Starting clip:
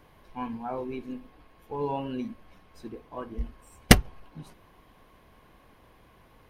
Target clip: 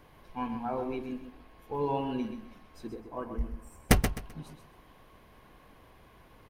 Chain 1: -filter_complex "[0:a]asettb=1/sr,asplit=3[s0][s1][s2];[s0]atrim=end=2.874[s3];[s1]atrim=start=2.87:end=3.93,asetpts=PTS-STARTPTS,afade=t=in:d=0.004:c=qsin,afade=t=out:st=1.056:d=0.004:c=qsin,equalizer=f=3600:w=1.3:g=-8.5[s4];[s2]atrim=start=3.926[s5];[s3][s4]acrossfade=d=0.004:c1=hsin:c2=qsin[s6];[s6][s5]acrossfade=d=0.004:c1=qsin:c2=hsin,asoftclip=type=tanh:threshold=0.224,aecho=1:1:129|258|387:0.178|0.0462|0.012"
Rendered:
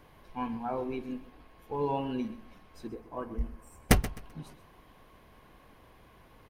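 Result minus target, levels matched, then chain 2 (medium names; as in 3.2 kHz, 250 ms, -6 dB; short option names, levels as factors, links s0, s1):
echo-to-direct -7 dB
-filter_complex "[0:a]asettb=1/sr,asplit=3[s0][s1][s2];[s0]atrim=end=2.874[s3];[s1]atrim=start=2.87:end=3.93,asetpts=PTS-STARTPTS,afade=t=in:d=0.004:c=qsin,afade=t=out:st=1.056:d=0.004:c=qsin,equalizer=f=3600:w=1.3:g=-8.5[s4];[s2]atrim=start=3.926[s5];[s3][s4]acrossfade=d=0.004:c1=hsin:c2=qsin[s6];[s6][s5]acrossfade=d=0.004:c1=qsin:c2=hsin,asoftclip=type=tanh:threshold=0.224,aecho=1:1:129|258|387:0.398|0.104|0.0269"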